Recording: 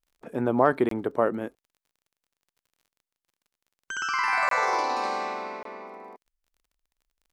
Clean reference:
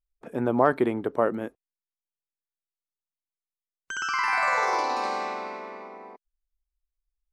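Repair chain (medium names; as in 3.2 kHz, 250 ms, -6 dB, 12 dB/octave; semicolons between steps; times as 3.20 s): de-click; interpolate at 0.89/4.49/5.63 s, 23 ms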